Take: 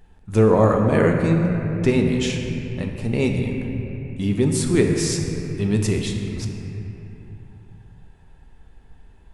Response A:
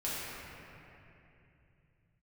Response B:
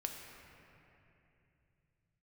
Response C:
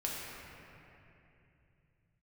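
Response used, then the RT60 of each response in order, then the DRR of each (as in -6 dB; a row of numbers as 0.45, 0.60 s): B; 2.8, 2.8, 2.8 s; -10.0, 2.0, -5.0 dB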